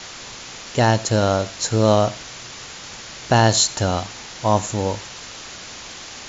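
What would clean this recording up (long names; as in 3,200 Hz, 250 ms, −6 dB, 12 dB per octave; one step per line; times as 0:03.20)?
noise reduction from a noise print 27 dB
echo removal 88 ms −20.5 dB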